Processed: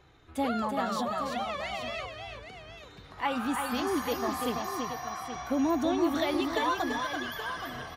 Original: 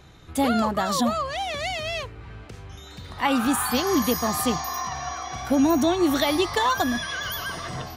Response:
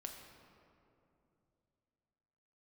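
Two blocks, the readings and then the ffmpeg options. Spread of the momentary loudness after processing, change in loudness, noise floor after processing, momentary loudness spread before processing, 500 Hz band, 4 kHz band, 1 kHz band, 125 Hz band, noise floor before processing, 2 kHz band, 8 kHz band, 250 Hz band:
14 LU, −7.0 dB, −51 dBFS, 18 LU, −6.0 dB, −9.0 dB, −5.5 dB, −10.5 dB, −43 dBFS, −6.0 dB, −12.5 dB, −7.5 dB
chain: -af "bass=frequency=250:gain=-5,treble=frequency=4000:gain=-8,flanger=delay=2.3:depth=4.3:regen=-55:speed=0.5:shape=sinusoidal,aecho=1:1:335|823:0.531|0.299,volume=-3dB"

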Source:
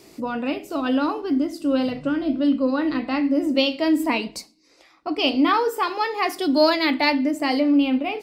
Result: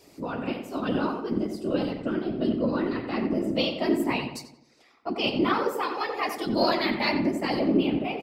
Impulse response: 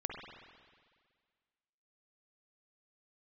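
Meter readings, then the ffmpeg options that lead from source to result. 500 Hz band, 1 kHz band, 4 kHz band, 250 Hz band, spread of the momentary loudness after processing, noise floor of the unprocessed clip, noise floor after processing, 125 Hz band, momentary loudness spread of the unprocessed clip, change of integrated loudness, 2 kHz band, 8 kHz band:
−4.0 dB, −5.5 dB, −5.5 dB, −6.0 dB, 8 LU, −56 dBFS, −59 dBFS, can't be measured, 8 LU, −5.5 dB, −5.5 dB, −6.0 dB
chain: -filter_complex "[0:a]afftfilt=real='hypot(re,im)*cos(2*PI*random(0))':imag='hypot(re,im)*sin(2*PI*random(1))':win_size=512:overlap=0.75,asplit=2[link_01][link_02];[link_02]adelay=89,lowpass=frequency=2300:poles=1,volume=-7dB,asplit=2[link_03][link_04];[link_04]adelay=89,lowpass=frequency=2300:poles=1,volume=0.48,asplit=2[link_05][link_06];[link_06]adelay=89,lowpass=frequency=2300:poles=1,volume=0.48,asplit=2[link_07][link_08];[link_08]adelay=89,lowpass=frequency=2300:poles=1,volume=0.48,asplit=2[link_09][link_10];[link_10]adelay=89,lowpass=frequency=2300:poles=1,volume=0.48,asplit=2[link_11][link_12];[link_12]adelay=89,lowpass=frequency=2300:poles=1,volume=0.48[link_13];[link_01][link_03][link_05][link_07][link_09][link_11][link_13]amix=inputs=7:normalize=0"

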